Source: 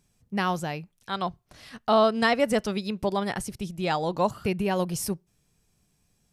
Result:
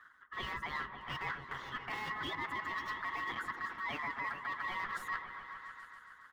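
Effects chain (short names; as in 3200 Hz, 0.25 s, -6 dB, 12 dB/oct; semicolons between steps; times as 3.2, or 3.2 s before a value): block floating point 3-bit; low shelf 320 Hz +7.5 dB; comb 7.5 ms, depth 84%; de-hum 219.1 Hz, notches 38; harmonic-percussive split harmonic -17 dB; EQ curve 140 Hz 0 dB, 460 Hz +15 dB, 880 Hz -6 dB, 1800 Hz +6 dB, 2800 Hz -5 dB, 7400 Hz -17 dB; limiter -20.5 dBFS, peak gain reduction 20 dB; reverse; compressor 12:1, threshold -42 dBFS, peak gain reduction 18.5 dB; reverse; ring modulator 1500 Hz; soft clip -36 dBFS, distortion -24 dB; on a send: repeats that get brighter 0.138 s, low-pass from 400 Hz, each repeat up 1 oct, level -3 dB; on the sum: gain +8.5 dB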